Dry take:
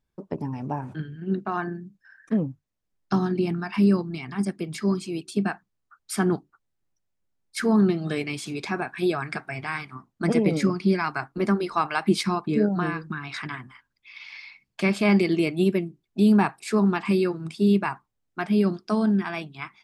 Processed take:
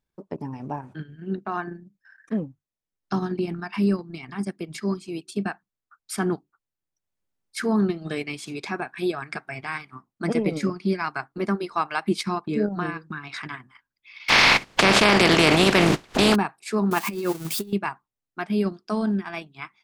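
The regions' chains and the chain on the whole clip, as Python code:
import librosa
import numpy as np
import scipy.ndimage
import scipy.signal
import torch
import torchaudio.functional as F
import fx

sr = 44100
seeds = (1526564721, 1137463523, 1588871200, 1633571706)

y = fx.spec_flatten(x, sr, power=0.33, at=(14.28, 16.34), fade=0.02)
y = fx.spacing_loss(y, sr, db_at_10k=21, at=(14.28, 16.34), fade=0.02)
y = fx.env_flatten(y, sr, amount_pct=100, at=(14.28, 16.34), fade=0.02)
y = fx.chain(y, sr, fx.crossing_spikes(level_db=-24.5),
    fx.peak_eq(hz=730.0, db=4.0, octaves=2.0),
    fx.over_compress(threshold_db=-23.0, ratio=-0.5), at=(16.91, 17.73))
y = fx.low_shelf(y, sr, hz=190.0, db=-5.0)
y = fx.transient(y, sr, attack_db=-1, sustain_db=-7)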